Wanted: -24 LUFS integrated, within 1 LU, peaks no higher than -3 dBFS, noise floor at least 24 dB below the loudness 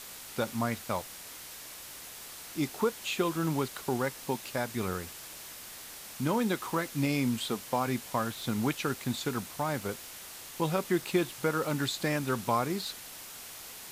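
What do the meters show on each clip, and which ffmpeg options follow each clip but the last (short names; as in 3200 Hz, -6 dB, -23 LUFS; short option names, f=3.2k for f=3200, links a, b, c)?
noise floor -46 dBFS; noise floor target -57 dBFS; loudness -33.0 LUFS; peak -14.0 dBFS; loudness target -24.0 LUFS
-> -af "afftdn=nr=11:nf=-46"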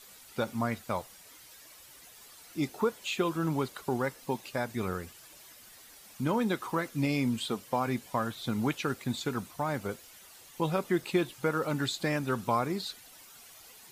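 noise floor -54 dBFS; noise floor target -57 dBFS
-> -af "afftdn=nr=6:nf=-54"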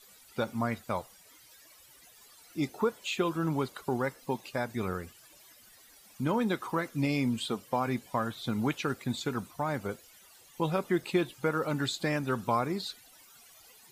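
noise floor -57 dBFS; loudness -32.5 LUFS; peak -15.0 dBFS; loudness target -24.0 LUFS
-> -af "volume=8.5dB"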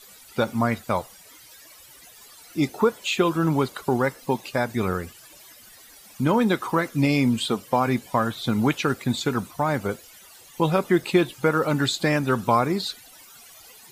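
loudness -24.0 LUFS; peak -6.5 dBFS; noise floor -49 dBFS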